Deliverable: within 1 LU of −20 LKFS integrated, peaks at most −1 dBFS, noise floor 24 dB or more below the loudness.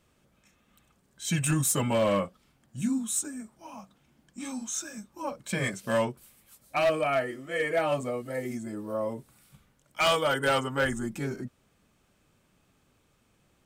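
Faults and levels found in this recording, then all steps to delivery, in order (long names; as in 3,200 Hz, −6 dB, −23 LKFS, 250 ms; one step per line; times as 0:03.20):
share of clipped samples 0.9%; peaks flattened at −19.5 dBFS; integrated loudness −29.0 LKFS; sample peak −19.5 dBFS; target loudness −20.0 LKFS
→ clipped peaks rebuilt −19.5 dBFS
level +9 dB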